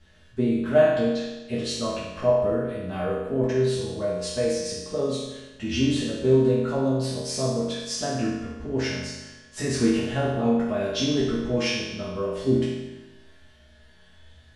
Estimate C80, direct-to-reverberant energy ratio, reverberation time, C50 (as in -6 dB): 2.5 dB, -10.5 dB, 1.1 s, 0.0 dB